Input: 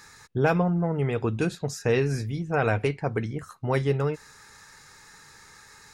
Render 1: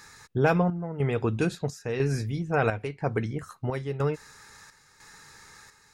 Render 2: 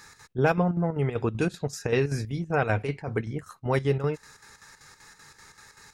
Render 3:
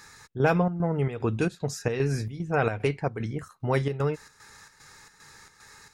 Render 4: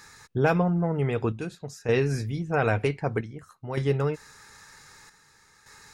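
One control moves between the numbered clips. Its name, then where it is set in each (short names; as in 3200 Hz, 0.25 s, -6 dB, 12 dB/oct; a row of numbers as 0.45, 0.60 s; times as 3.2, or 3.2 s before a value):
chopper, rate: 1, 5.2, 2.5, 0.53 Hz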